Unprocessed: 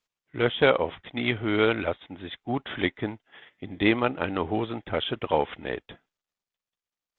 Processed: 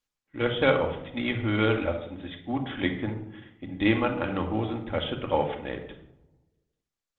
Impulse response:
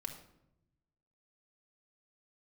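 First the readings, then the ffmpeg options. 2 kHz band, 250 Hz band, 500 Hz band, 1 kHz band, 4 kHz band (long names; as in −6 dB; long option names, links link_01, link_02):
−2.0 dB, +0.5 dB, −1.5 dB, −1.5 dB, −3.0 dB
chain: -filter_complex "[0:a]lowshelf=frequency=86:gain=6[link_01];[1:a]atrim=start_sample=2205[link_02];[link_01][link_02]afir=irnorm=-1:irlink=0" -ar 48000 -c:a libopus -b:a 24k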